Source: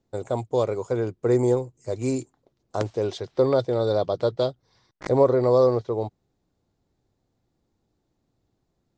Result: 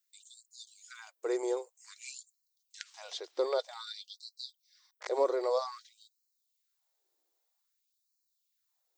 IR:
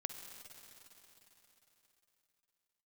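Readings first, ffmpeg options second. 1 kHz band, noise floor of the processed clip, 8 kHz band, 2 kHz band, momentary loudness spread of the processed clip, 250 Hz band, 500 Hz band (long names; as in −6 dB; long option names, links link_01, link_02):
−10.0 dB, −81 dBFS, can't be measured, −6.5 dB, 20 LU, −17.5 dB, −13.0 dB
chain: -filter_complex "[0:a]aemphasis=mode=production:type=riaa,acrossover=split=5800[link_01][link_02];[link_02]acompressor=threshold=-51dB:ratio=4:attack=1:release=60[link_03];[link_01][link_03]amix=inputs=2:normalize=0,afftfilt=real='re*gte(b*sr/1024,280*pow(4000/280,0.5+0.5*sin(2*PI*0.52*pts/sr)))':imag='im*gte(b*sr/1024,280*pow(4000/280,0.5+0.5*sin(2*PI*0.52*pts/sr)))':win_size=1024:overlap=0.75,volume=-7.5dB"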